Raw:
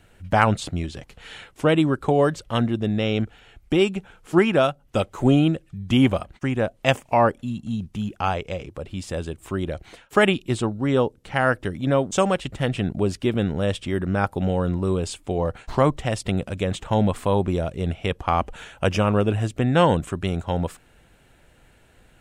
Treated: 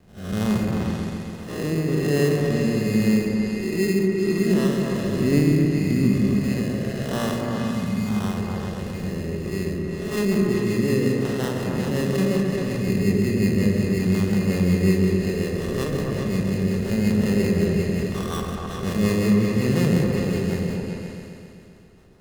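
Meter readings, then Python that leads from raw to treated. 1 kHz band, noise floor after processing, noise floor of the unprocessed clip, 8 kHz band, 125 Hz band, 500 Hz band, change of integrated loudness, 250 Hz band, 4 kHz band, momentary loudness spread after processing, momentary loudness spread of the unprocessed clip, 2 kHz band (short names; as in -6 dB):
-10.5 dB, -38 dBFS, -56 dBFS, +2.5 dB, +2.0 dB, -1.5 dB, +0.5 dB, +3.5 dB, -3.5 dB, 9 LU, 11 LU, -3.5 dB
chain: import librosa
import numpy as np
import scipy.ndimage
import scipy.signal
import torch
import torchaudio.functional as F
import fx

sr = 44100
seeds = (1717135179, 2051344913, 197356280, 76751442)

p1 = fx.spec_blur(x, sr, span_ms=260.0)
p2 = fx.dynamic_eq(p1, sr, hz=840.0, q=1.7, threshold_db=-39.0, ratio=4.0, max_db=-4)
p3 = fx.level_steps(p2, sr, step_db=19)
p4 = p2 + (p3 * 10.0 ** (-1.5 / 20.0))
p5 = fx.small_body(p4, sr, hz=(200.0, 390.0, 1200.0), ring_ms=45, db=11)
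p6 = fx.sample_hold(p5, sr, seeds[0], rate_hz=2300.0, jitter_pct=0)
p7 = fx.rotary_switch(p6, sr, hz=1.2, then_hz=5.5, switch_at_s=9.32)
p8 = p7 + fx.echo_opening(p7, sr, ms=132, hz=400, octaves=2, feedback_pct=70, wet_db=0, dry=0)
y = p8 * 10.0 ** (-5.5 / 20.0)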